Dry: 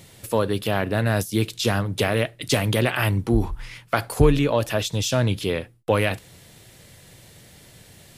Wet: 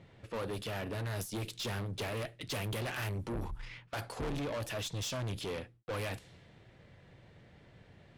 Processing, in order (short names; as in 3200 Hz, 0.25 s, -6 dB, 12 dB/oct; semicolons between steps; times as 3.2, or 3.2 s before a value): low-pass opened by the level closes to 1900 Hz, open at -18.5 dBFS; tube stage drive 27 dB, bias 0.25; gain -7 dB